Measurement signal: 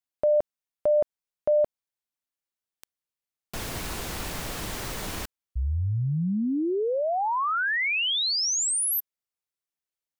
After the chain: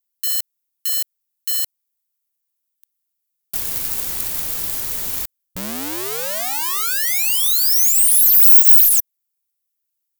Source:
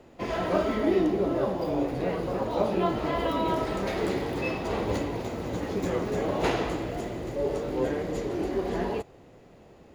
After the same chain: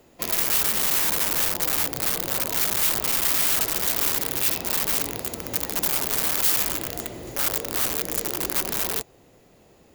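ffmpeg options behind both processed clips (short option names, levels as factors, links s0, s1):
-af "aeval=exprs='(mod(15.8*val(0)+1,2)-1)/15.8':c=same,aemphasis=mode=production:type=75fm,aeval=exprs='1.12*(cos(1*acos(clip(val(0)/1.12,-1,1)))-cos(1*PI/2))+0.0158*(cos(8*acos(clip(val(0)/1.12,-1,1)))-cos(8*PI/2))':c=same,volume=0.75"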